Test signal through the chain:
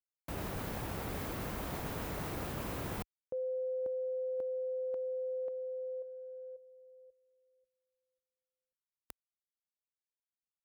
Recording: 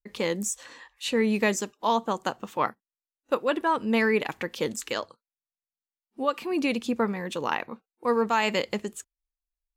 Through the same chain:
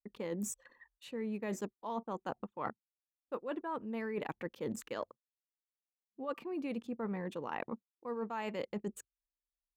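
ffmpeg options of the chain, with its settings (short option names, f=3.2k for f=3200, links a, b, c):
-af "highpass=49,anlmdn=0.251,equalizer=f=5.9k:w=0.35:g=-13,areverse,acompressor=threshold=-36dB:ratio=16,areverse,volume=1dB"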